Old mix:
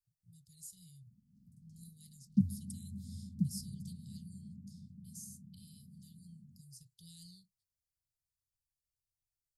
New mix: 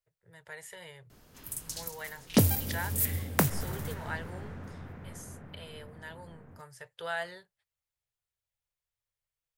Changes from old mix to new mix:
background: remove band-pass 200 Hz, Q 2.5; master: remove Chebyshev band-stop 210–4500 Hz, order 4

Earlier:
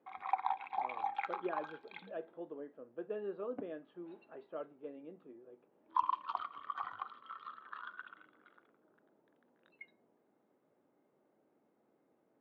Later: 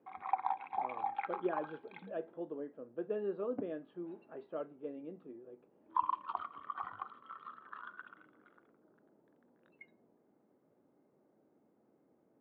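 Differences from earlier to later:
background: add air absorption 320 m; master: add low shelf 440 Hz +7 dB

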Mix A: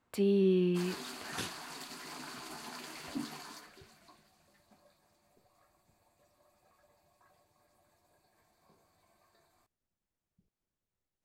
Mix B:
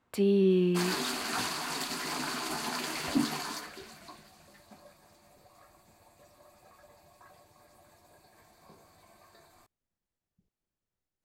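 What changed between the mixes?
first sound +3.0 dB; second sound +11.0 dB

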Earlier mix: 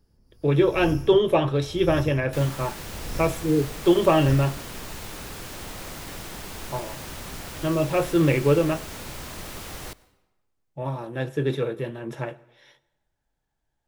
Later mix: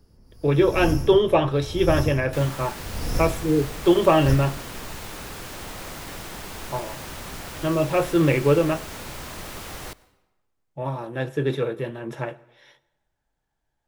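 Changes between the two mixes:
first sound +7.5 dB; master: add bell 1100 Hz +2.5 dB 2.6 oct

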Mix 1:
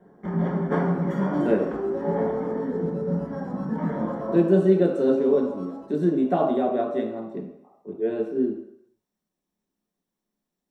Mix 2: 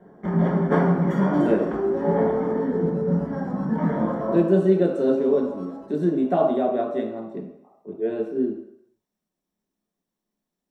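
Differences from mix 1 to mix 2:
first sound +4.0 dB; master: remove notch 640 Hz, Q 20

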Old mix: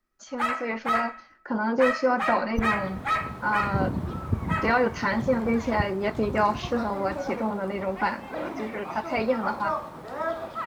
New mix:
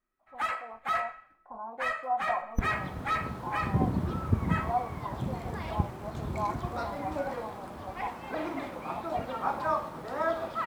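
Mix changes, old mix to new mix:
speech: add vocal tract filter a; first sound -4.5 dB

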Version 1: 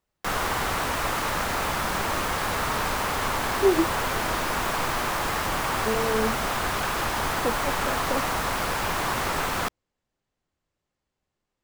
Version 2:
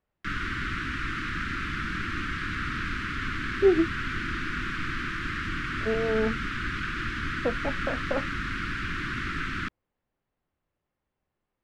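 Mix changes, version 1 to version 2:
background: add Chebyshev band-stop 320–1400 Hz, order 3; master: add LPF 2600 Hz 12 dB/oct

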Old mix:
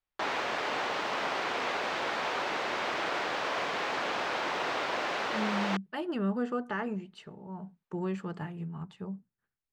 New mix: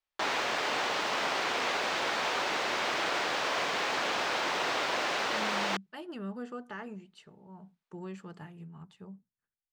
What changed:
speech -8.5 dB; master: add high shelf 3900 Hz +9.5 dB

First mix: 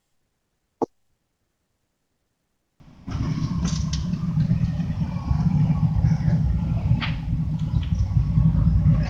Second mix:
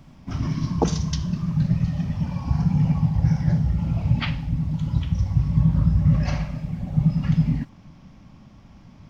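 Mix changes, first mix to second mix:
background: entry -2.80 s; reverb: on, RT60 0.75 s

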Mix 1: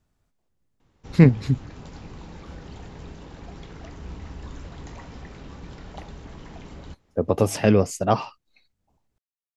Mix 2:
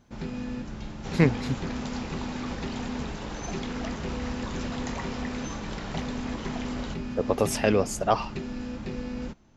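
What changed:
first sound: unmuted; second sound +9.5 dB; master: add low shelf 300 Hz -11.5 dB

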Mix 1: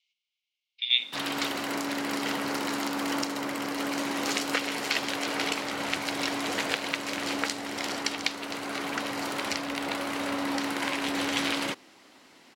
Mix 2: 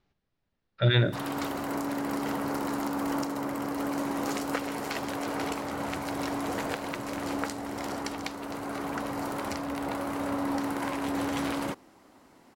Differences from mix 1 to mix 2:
speech: remove rippled Chebyshev high-pass 2100 Hz, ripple 6 dB; master: remove weighting filter D

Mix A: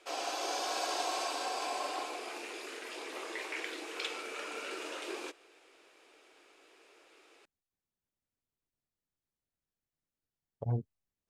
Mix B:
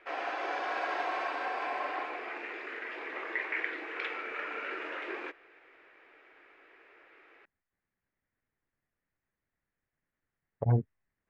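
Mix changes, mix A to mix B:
speech +6.5 dB; master: add synth low-pass 1900 Hz, resonance Q 3.2

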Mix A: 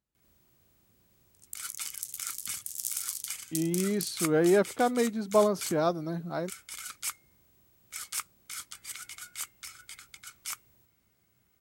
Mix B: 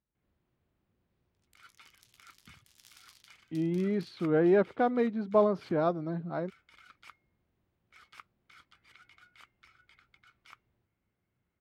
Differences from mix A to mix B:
first sound -7.5 dB; master: add air absorption 350 m

